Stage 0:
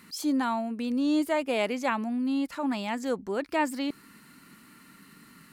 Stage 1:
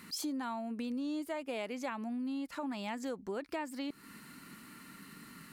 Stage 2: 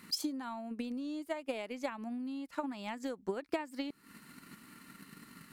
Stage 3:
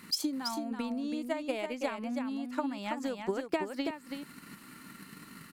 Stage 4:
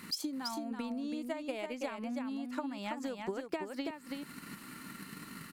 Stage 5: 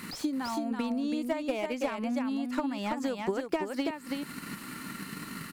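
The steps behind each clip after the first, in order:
compression 6:1, threshold -37 dBFS, peak gain reduction 15 dB; trim +1 dB
transient shaper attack +10 dB, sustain -5 dB; trim -3 dB
delay 329 ms -6 dB; trim +3.5 dB
compression 2:1, threshold -42 dBFS, peak gain reduction 9.5 dB; trim +2.5 dB
slew-rate limiter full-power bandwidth 24 Hz; trim +7 dB

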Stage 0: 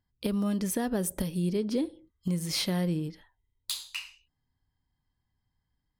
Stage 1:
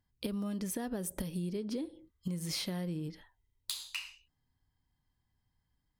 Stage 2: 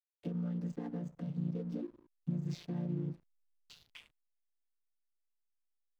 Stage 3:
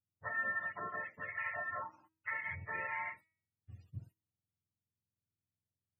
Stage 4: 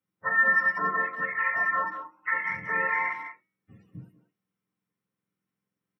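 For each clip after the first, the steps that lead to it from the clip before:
compression, threshold -34 dBFS, peak gain reduction 9.5 dB
vocoder on a held chord major triad, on A#2; hysteresis with a dead band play -52.5 dBFS
spectrum inverted on a logarithmic axis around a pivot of 560 Hz; feedback comb 320 Hz, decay 0.54 s, mix 50%; loudest bins only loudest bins 64; trim +8.5 dB
speakerphone echo 190 ms, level -9 dB; reverberation RT60 0.15 s, pre-delay 3 ms, DRR 1.5 dB

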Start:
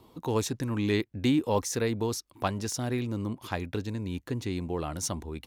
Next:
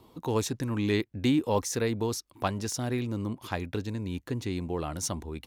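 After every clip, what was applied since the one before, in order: no audible change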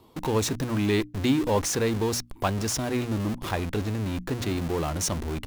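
in parallel at -4.5 dB: Schmitt trigger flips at -41.5 dBFS; on the sum: hum notches 60/120/180/240/300 Hz; trim +1 dB

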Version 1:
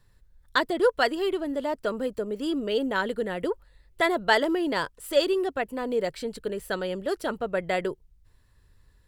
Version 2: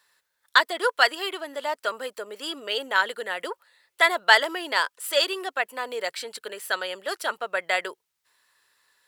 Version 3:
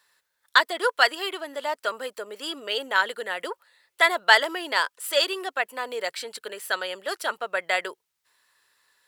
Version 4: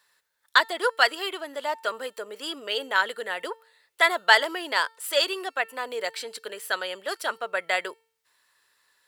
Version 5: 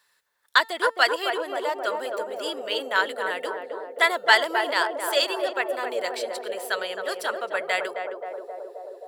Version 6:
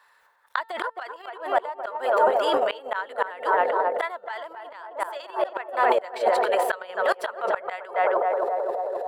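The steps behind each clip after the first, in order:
high-pass 980 Hz 12 dB/octave; trim +7.5 dB
no audible change
feedback comb 450 Hz, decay 0.56 s, mix 40%; trim +3.5 dB
band-passed feedback delay 265 ms, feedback 82%, band-pass 500 Hz, level -3 dB
inverted gate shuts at -17 dBFS, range -30 dB; transient shaper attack -5 dB, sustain +11 dB; FFT filter 280 Hz 0 dB, 910 Hz +15 dB, 5.5 kHz -4 dB

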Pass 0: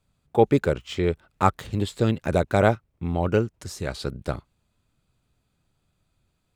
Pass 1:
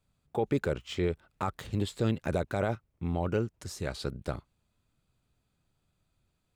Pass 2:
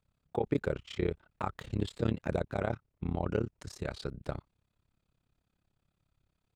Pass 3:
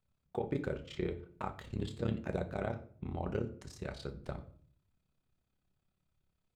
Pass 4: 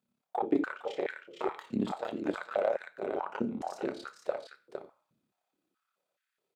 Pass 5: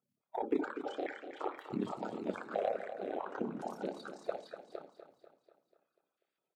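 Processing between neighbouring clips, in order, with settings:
peak limiter -14 dBFS, peak gain reduction 11 dB; trim -4.5 dB
treble shelf 7.1 kHz -11 dB; AM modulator 34 Hz, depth 90%; trim +1.5 dB
reverberation RT60 0.50 s, pre-delay 5 ms, DRR 7 dB; trim -5 dB
delay 459 ms -5 dB; Chebyshev shaper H 6 -20 dB, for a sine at -17 dBFS; step-sequenced high-pass 4.7 Hz 230–1700 Hz
coarse spectral quantiser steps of 30 dB; on a send: feedback delay 245 ms, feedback 52%, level -10.5 dB; on the sum: trim -4.5 dB

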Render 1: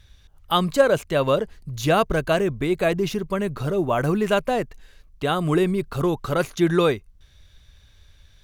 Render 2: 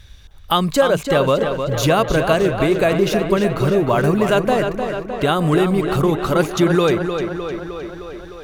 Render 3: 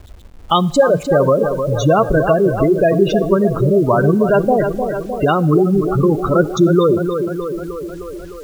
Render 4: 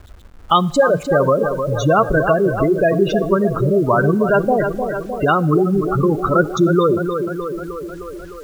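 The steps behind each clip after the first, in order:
compression 2:1, threshold -25 dBFS, peak gain reduction 8 dB; short-mantissa float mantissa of 6-bit; tape echo 306 ms, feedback 72%, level -6 dB, low-pass 5.1 kHz; trim +8.5 dB
spectral gate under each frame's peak -15 dB strong; word length cut 8-bit, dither none; on a send at -21 dB: reverberation RT60 1.4 s, pre-delay 17 ms; on the sum: trim +3.5 dB
peaking EQ 1.4 kHz +6 dB 0.84 oct; trim -2.5 dB

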